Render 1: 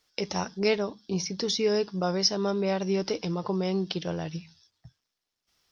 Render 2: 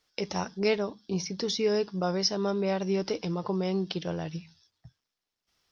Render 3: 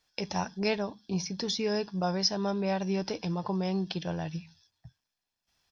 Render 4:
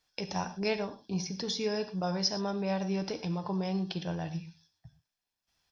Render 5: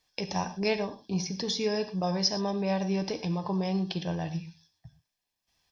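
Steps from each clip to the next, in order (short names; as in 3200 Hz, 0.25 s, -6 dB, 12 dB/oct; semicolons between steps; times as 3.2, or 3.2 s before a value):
high shelf 5400 Hz -4.5 dB; gain -1 dB
comb 1.2 ms, depth 38%; gain -1 dB
non-linear reverb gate 0.14 s flat, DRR 10 dB; gain -2.5 dB
Butterworth band-stop 1400 Hz, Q 5.9; gain +3 dB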